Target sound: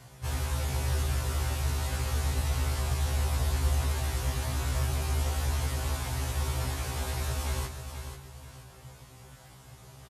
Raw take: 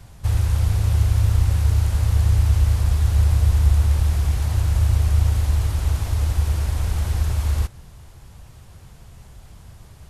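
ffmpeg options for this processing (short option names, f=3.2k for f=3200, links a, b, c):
-filter_complex "[0:a]highpass=59,bass=f=250:g=-4,treble=f=4k:g=0,aecho=1:1:7.5:0.53,asplit=2[a][b];[b]aecho=0:1:485|970|1455|1940:0.376|0.12|0.0385|0.0123[c];[a][c]amix=inputs=2:normalize=0,afftfilt=real='re*1.73*eq(mod(b,3),0)':imag='im*1.73*eq(mod(b,3),0)':win_size=2048:overlap=0.75"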